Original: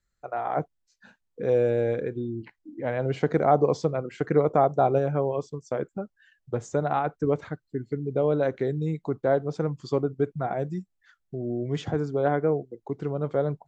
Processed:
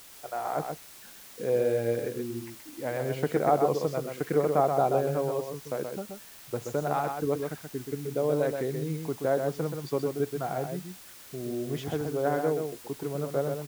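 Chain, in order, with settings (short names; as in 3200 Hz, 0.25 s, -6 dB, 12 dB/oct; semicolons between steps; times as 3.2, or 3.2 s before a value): low shelf 100 Hz -8 dB; in parallel at -7.5 dB: requantised 6-bit, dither triangular; on the sum: echo 0.128 s -5.5 dB; gain -6.5 dB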